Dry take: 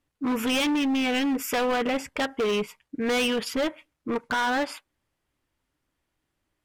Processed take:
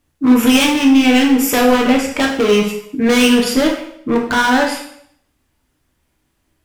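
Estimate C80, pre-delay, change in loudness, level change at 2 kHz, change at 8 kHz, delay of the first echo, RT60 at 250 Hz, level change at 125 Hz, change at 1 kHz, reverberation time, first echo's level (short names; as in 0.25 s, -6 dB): 9.0 dB, 6 ms, +12.5 dB, +11.0 dB, +14.0 dB, none, 0.65 s, +14.5 dB, +10.5 dB, 0.65 s, none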